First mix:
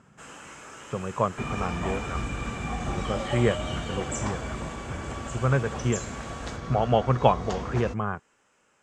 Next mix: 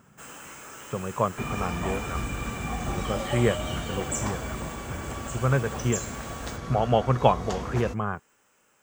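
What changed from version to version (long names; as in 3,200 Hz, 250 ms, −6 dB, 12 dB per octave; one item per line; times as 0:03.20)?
master: remove Bessel low-pass filter 6,700 Hz, order 4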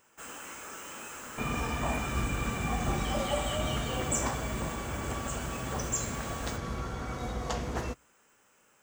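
speech: muted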